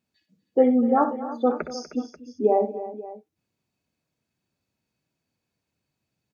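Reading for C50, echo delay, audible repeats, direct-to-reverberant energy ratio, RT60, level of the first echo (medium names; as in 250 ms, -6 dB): no reverb, 63 ms, 5, no reverb, no reverb, -10.5 dB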